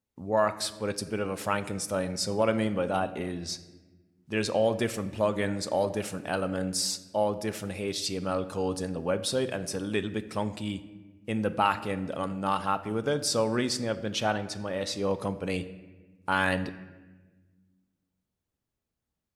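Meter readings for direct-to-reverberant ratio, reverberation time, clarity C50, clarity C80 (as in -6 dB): 10.5 dB, 1.3 s, 14.0 dB, 15.5 dB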